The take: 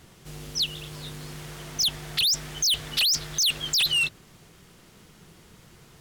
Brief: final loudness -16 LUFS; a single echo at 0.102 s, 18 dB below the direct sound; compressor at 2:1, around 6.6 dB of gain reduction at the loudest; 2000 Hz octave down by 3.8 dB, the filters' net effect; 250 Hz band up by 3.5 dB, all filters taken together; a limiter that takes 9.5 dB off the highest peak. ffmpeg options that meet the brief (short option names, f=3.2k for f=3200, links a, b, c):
-af "equalizer=f=250:t=o:g=6,equalizer=f=2k:t=o:g=-6.5,acompressor=threshold=-34dB:ratio=2,alimiter=level_in=7dB:limit=-24dB:level=0:latency=1,volume=-7dB,aecho=1:1:102:0.126,volume=20dB"